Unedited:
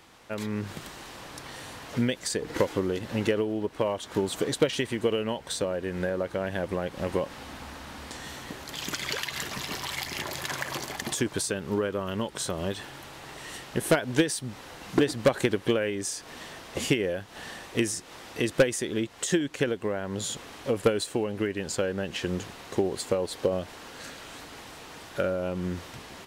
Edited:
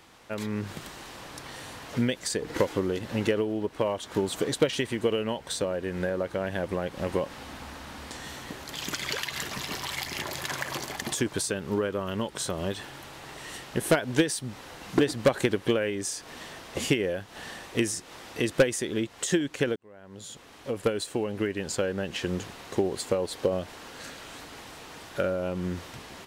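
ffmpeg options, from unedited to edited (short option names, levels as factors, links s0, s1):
-filter_complex "[0:a]asplit=2[s0][s1];[s0]atrim=end=19.76,asetpts=PTS-STARTPTS,afade=t=out:st=19.756:d=0.004:c=hsin[s2];[s1]atrim=start=19.76,asetpts=PTS-STARTPTS,afade=t=in:d=1.61[s3];[s2][s3]concat=n=2:v=0:a=1"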